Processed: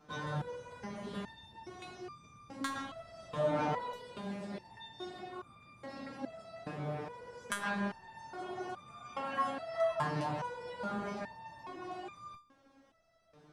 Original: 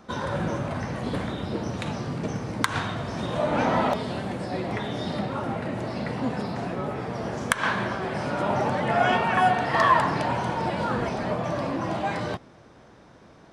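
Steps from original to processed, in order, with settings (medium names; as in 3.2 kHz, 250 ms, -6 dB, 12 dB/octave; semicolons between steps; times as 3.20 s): dynamic bell 2.2 kHz, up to -3 dB, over -37 dBFS, Q 1.4; resonator arpeggio 2.4 Hz 150–1200 Hz; trim +1.5 dB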